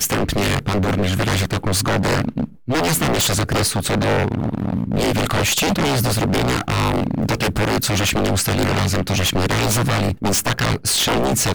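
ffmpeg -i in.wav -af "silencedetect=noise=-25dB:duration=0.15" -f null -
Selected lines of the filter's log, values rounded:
silence_start: 2.45
silence_end: 2.68 | silence_duration: 0.23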